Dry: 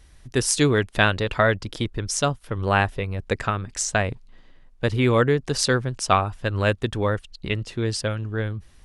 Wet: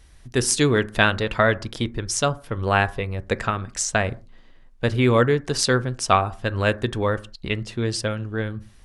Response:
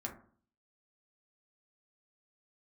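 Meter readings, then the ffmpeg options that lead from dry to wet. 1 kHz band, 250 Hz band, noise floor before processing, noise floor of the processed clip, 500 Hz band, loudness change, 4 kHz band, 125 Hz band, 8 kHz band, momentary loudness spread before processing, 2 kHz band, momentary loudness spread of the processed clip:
+1.0 dB, +1.0 dB, −51 dBFS, −50 dBFS, +1.0 dB, +1.0 dB, +1.0 dB, −0.5 dB, +1.0 dB, 9 LU, +1.0 dB, 10 LU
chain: -filter_complex "[0:a]asplit=2[link_01][link_02];[1:a]atrim=start_sample=2205,afade=type=out:start_time=0.24:duration=0.01,atrim=end_sample=11025,lowshelf=frequency=340:gain=-5.5[link_03];[link_02][link_03]afir=irnorm=-1:irlink=0,volume=-8dB[link_04];[link_01][link_04]amix=inputs=2:normalize=0,volume=-1dB"

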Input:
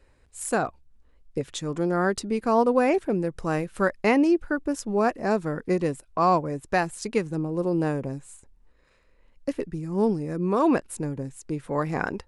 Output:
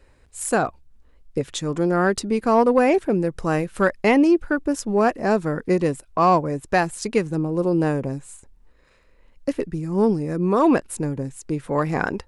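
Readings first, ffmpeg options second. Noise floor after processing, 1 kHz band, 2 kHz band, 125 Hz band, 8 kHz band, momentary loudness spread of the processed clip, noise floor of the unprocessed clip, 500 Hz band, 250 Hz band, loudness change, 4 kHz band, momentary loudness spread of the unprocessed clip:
−55 dBFS, +4.0 dB, +4.0 dB, +4.5 dB, +4.5 dB, 11 LU, −60 dBFS, +4.5 dB, +4.5 dB, +4.5 dB, +4.5 dB, 12 LU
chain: -af "acontrast=88,volume=-2.5dB"

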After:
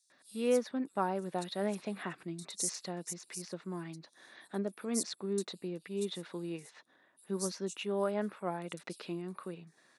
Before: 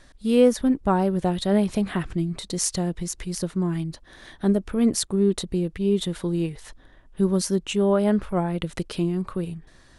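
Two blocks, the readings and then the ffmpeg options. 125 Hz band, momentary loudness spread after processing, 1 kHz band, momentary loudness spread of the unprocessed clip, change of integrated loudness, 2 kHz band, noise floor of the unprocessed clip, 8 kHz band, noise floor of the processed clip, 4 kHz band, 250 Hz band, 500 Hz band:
−18.0 dB, 12 LU, −9.0 dB, 10 LU, −13.0 dB, −8.5 dB, −53 dBFS, −8.5 dB, −70 dBFS, −10.5 dB, −16.0 dB, −11.5 dB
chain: -filter_complex "[0:a]highpass=frequency=160:width=0.5412,highpass=frequency=160:width=1.3066,lowshelf=frequency=340:gain=-11.5,bandreject=frequency=3100:width=9.2,acrossover=split=5000[link_01][link_02];[link_01]adelay=100[link_03];[link_03][link_02]amix=inputs=2:normalize=0,volume=-7.5dB"

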